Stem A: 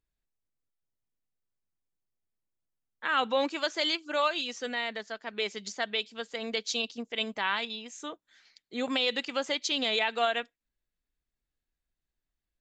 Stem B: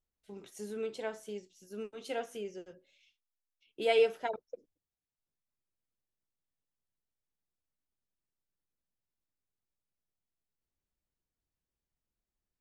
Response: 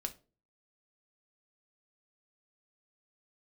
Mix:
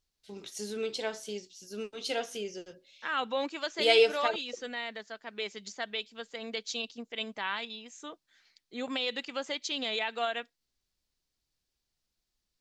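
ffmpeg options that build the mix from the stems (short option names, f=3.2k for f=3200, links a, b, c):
-filter_complex "[0:a]volume=-4.5dB[a];[1:a]equalizer=f=4.6k:w=0.94:g=13.5,volume=2.5dB[b];[a][b]amix=inputs=2:normalize=0"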